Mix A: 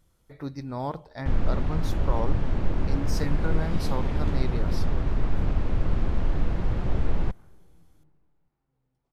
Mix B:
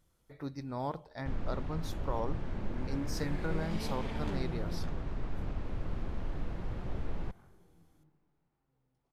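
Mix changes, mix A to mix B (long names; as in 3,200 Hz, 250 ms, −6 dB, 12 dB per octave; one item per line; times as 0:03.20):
speech −4.5 dB
first sound −9.5 dB
master: add low-shelf EQ 130 Hz −3.5 dB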